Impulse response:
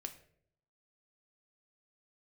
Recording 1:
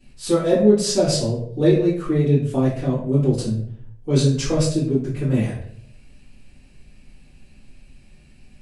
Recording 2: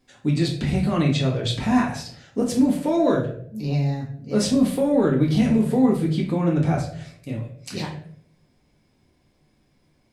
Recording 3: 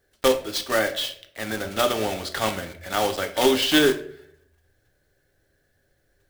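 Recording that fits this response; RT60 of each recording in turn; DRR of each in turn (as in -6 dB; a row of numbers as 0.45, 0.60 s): 3; 0.60, 0.65, 0.65 s; -12.5, -3.0, 6.0 dB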